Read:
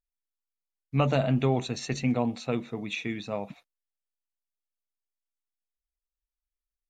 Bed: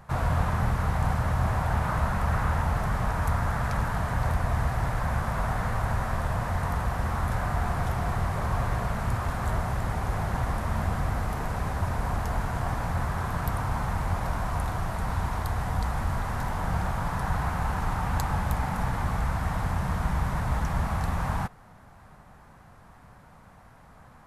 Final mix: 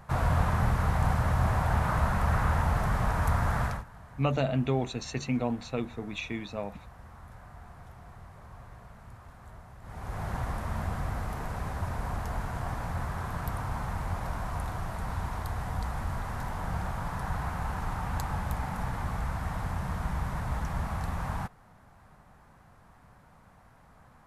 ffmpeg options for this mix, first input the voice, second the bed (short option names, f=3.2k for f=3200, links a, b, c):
-filter_complex "[0:a]adelay=3250,volume=-3dB[a];[1:a]volume=15.5dB,afade=t=out:st=3.63:d=0.21:silence=0.0944061,afade=t=in:st=9.81:d=0.48:silence=0.158489[b];[a][b]amix=inputs=2:normalize=0"